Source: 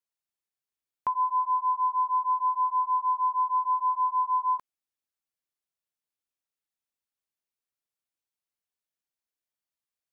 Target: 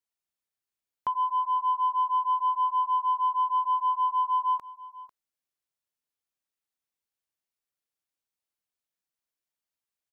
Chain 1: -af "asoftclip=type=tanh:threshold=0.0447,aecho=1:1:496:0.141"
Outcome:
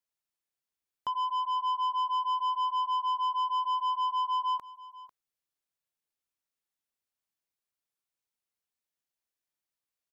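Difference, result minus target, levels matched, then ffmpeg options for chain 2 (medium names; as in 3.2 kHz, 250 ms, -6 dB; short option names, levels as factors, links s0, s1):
saturation: distortion +15 dB
-af "asoftclip=type=tanh:threshold=0.141,aecho=1:1:496:0.141"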